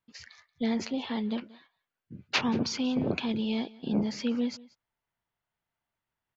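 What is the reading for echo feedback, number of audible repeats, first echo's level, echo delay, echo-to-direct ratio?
no regular repeats, 1, -22.0 dB, 181 ms, -22.0 dB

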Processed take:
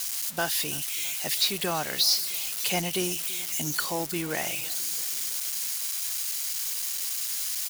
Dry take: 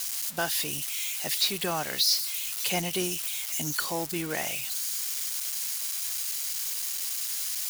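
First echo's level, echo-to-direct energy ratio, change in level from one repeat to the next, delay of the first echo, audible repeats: -21.0 dB, -19.0 dB, -4.5 dB, 331 ms, 4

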